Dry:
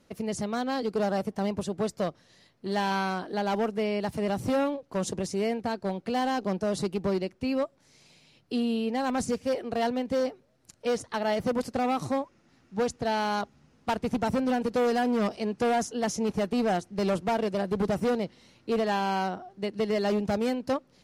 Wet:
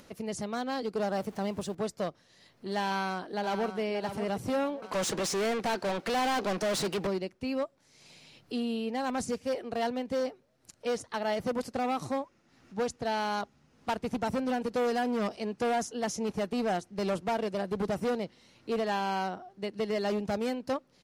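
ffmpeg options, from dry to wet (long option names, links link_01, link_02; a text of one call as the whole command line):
ffmpeg -i in.wav -filter_complex "[0:a]asettb=1/sr,asplit=3[link_01][link_02][link_03];[link_01]atrim=end=1.124[link_04];[link_02]atrim=start=1.12:end=1.75,asetpts=PTS-STARTPTS,afade=type=in:duration=0.004:curve=qsin,afade=type=out:start_time=0.626:duration=0.004:curve=qsin,aeval=exprs='val(0)+0.5*0.00562*sgn(val(0))':channel_layout=same[link_05];[link_03]atrim=start=1.746[link_06];[link_04][link_05]acrossfade=duration=0.004:curve1=hsin:curve2=qsin[link_07];[link_07][link_06]acrossfade=duration=0.004:curve1=qsin:curve2=hsin,asplit=2[link_08][link_09];[link_09]afade=type=in:start_time=2.85:duration=0.01,afade=type=out:start_time=3.79:duration=0.01,aecho=0:1:580|1160|1740:0.354813|0.0887033|0.0221758[link_10];[link_08][link_10]amix=inputs=2:normalize=0,asettb=1/sr,asplit=3[link_11][link_12][link_13];[link_11]atrim=end=4.824[link_14];[link_12]atrim=start=4.82:end=7.07,asetpts=PTS-STARTPTS,afade=type=in:duration=0.004:curve=qsin,afade=type=out:start_time=2.246:duration=0.004:curve=qsin,asplit=2[link_15][link_16];[link_16]highpass=frequency=720:poles=1,volume=27dB,asoftclip=type=tanh:threshold=-20.5dB[link_17];[link_15][link_17]amix=inputs=2:normalize=0,lowpass=frequency=6100:poles=1,volume=-6dB[link_18];[link_13]atrim=start=7.066[link_19];[link_14][link_18]acrossfade=duration=0.004:curve1=hsin:curve2=qsin[link_20];[link_20][link_19]acrossfade=duration=0.004:curve1=qsin:curve2=hsin,lowshelf=frequency=320:gain=-3.5,acompressor=mode=upward:threshold=-43dB:ratio=2.5,volume=-2.5dB" out.wav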